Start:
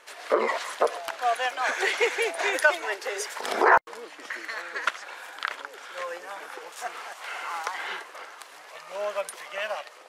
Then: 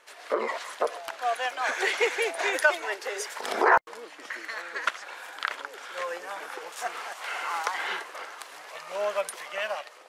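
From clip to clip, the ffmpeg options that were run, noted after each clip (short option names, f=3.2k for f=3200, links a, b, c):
-af "dynaudnorm=f=630:g=5:m=7dB,volume=-4.5dB"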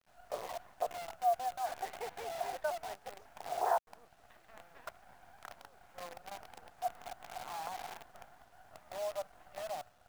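-af "bandpass=f=720:t=q:w=7.5:csg=0,acrusher=bits=8:dc=4:mix=0:aa=0.000001,volume=-1dB"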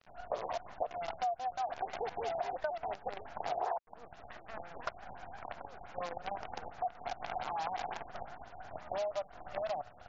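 -af "acompressor=threshold=-45dB:ratio=6,afftfilt=real='re*lt(b*sr/1024,900*pow(7500/900,0.5+0.5*sin(2*PI*5.8*pts/sr)))':imag='im*lt(b*sr/1024,900*pow(7500/900,0.5+0.5*sin(2*PI*5.8*pts/sr)))':win_size=1024:overlap=0.75,volume=11.5dB"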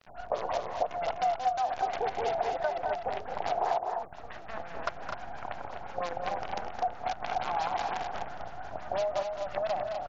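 -af "aecho=1:1:215.7|250.7:0.355|0.501,volume=5.5dB"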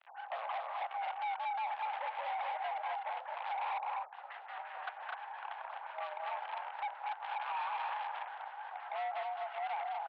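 -af "asoftclip=type=hard:threshold=-32dB,highpass=f=540:t=q:w=0.5412,highpass=f=540:t=q:w=1.307,lowpass=f=3.3k:t=q:w=0.5176,lowpass=f=3.3k:t=q:w=0.7071,lowpass=f=3.3k:t=q:w=1.932,afreqshift=100,volume=-2dB"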